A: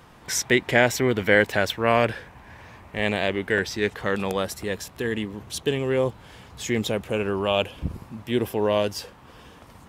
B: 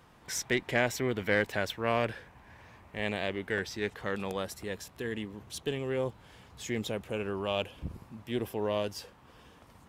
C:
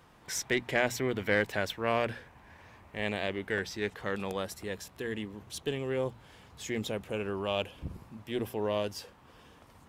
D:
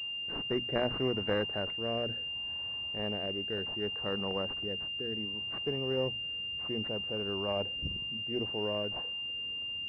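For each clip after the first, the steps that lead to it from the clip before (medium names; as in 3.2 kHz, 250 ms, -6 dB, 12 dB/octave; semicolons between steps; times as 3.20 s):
single-diode clipper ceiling -11.5 dBFS; trim -8.5 dB
hum notches 60/120/180/240 Hz
rotary cabinet horn 0.65 Hz; class-D stage that switches slowly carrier 2.8 kHz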